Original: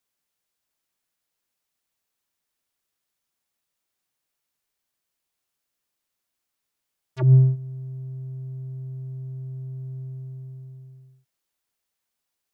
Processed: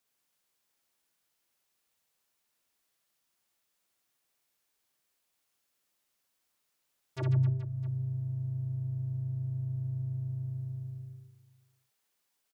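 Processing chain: bass shelf 120 Hz -5 dB; harmony voices -4 st -9 dB; compression 2:1, threshold -40 dBFS, peak gain reduction 15 dB; reverse bouncing-ball echo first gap 60 ms, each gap 1.4×, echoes 5

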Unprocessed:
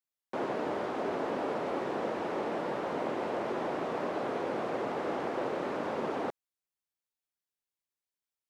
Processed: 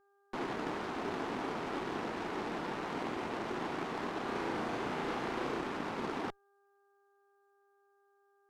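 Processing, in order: peaking EQ 560 Hz -11.5 dB 0.63 oct; mains buzz 400 Hz, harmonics 4, -69 dBFS -4 dB/octave; Chebyshev shaper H 3 -19 dB, 8 -23 dB, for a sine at -25 dBFS; 4.23–5.61 s: flutter echo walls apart 6.1 m, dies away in 0.43 s; trim +1.5 dB

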